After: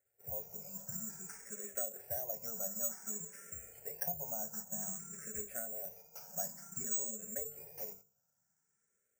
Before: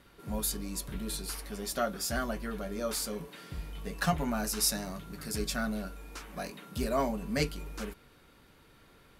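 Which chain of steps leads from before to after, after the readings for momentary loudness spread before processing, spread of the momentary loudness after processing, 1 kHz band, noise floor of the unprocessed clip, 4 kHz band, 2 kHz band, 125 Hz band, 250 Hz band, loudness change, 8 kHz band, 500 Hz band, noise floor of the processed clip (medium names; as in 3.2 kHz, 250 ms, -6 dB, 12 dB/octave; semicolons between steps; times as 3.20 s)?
12 LU, 9 LU, -15.0 dB, -60 dBFS, -22.0 dB, -16.5 dB, -16.5 dB, -18.0 dB, -5.5 dB, -2.5 dB, -11.5 dB, -82 dBFS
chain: high-pass 97 Hz 24 dB/octave; gate -51 dBFS, range -18 dB; hum notches 50/100/150/200/250/300/350/400/450 Hz; low-pass that closes with the level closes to 740 Hz, closed at -26 dBFS; low-pass 1.6 kHz 12 dB/octave; compression 4:1, threshold -36 dBFS, peak gain reduction 10.5 dB; static phaser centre 1.1 kHz, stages 6; careless resampling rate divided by 6×, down filtered, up zero stuff; barber-pole phaser +0.54 Hz; trim -1.5 dB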